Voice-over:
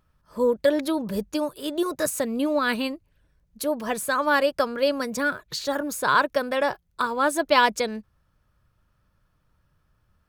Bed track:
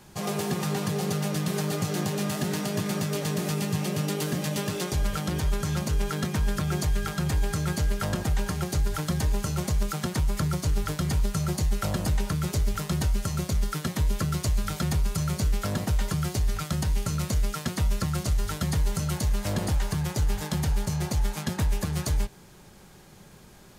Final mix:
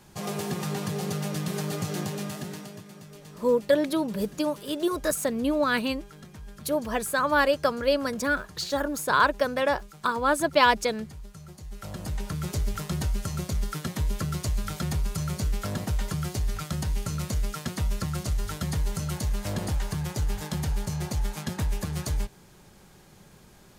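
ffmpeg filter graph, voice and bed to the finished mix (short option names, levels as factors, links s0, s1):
-filter_complex "[0:a]adelay=3050,volume=0.891[s0];[1:a]volume=4.47,afade=t=out:st=1.97:d=0.88:silence=0.16788,afade=t=in:st=11.62:d=0.92:silence=0.16788[s1];[s0][s1]amix=inputs=2:normalize=0"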